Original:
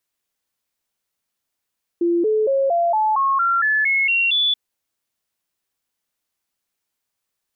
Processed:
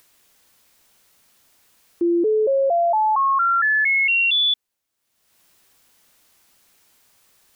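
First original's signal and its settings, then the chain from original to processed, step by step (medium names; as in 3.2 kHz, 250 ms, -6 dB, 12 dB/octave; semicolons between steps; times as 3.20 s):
stepped sine 343 Hz up, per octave 3, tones 11, 0.23 s, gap 0.00 s -15 dBFS
upward compressor, threshold -41 dBFS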